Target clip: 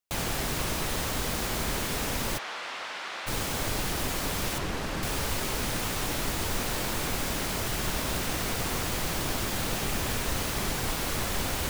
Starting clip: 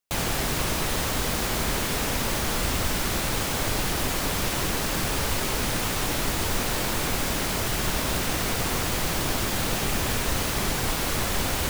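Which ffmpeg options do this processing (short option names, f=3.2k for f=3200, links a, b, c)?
-filter_complex "[0:a]asplit=3[a][b][c];[a]afade=t=out:st=2.37:d=0.02[d];[b]highpass=790,lowpass=3.4k,afade=t=in:st=2.37:d=0.02,afade=t=out:st=3.26:d=0.02[e];[c]afade=t=in:st=3.26:d=0.02[f];[d][e][f]amix=inputs=3:normalize=0,asettb=1/sr,asplit=3[g][h][i];[g]atrim=end=4.584[j];[h]atrim=start=4.58:end=5.03,asetpts=PTS-STARTPTS,afade=t=in:d=0.004:c=qsin,afade=t=out:st=0.446:d=0.004:c=qsin,aemphasis=mode=reproduction:type=50kf[k];[i]atrim=start=5.026[l];[j][k]acrossfade=d=0.004:c1=hsin:c2=qsin[m];[m][l]acrossfade=d=0.004:c1=qsin:c2=hsin,volume=-4dB"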